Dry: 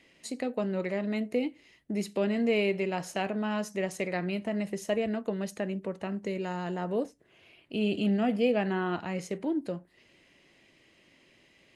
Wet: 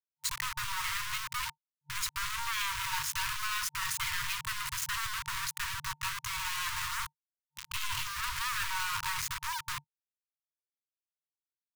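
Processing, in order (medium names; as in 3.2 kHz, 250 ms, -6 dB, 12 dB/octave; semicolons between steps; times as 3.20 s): reverse echo 246 ms -20.5 dB; companded quantiser 2-bit; FFT band-reject 150–910 Hz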